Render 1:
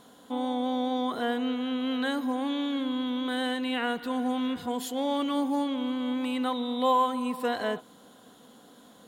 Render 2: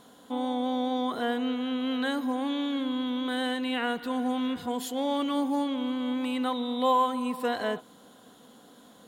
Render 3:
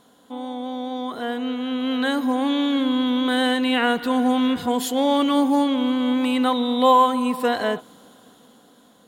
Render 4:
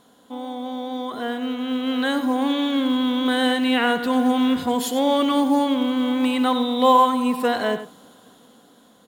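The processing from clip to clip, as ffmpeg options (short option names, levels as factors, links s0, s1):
-af anull
-af "dynaudnorm=f=410:g=9:m=3.55,volume=0.841"
-filter_complex "[0:a]asplit=2[s0][s1];[s1]adelay=93.29,volume=0.282,highshelf=f=4000:g=-2.1[s2];[s0][s2]amix=inputs=2:normalize=0,acrusher=bits=9:mode=log:mix=0:aa=0.000001"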